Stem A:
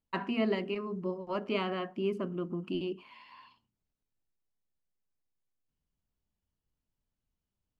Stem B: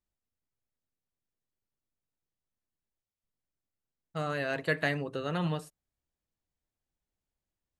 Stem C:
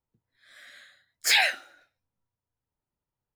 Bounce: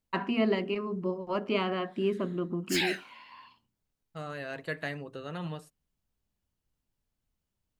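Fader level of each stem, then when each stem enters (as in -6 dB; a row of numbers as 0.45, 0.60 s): +3.0, -6.0, -9.5 dB; 0.00, 0.00, 1.45 s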